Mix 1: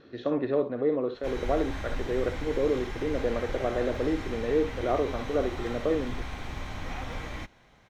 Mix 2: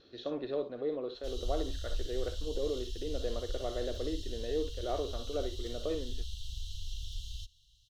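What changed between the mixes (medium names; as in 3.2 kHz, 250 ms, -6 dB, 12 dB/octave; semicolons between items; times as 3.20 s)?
background: add brick-wall FIR band-stop 150–2700 Hz; master: add graphic EQ 125/250/500/1000/2000/4000 Hz -11/-9/-4/-8/-11/+6 dB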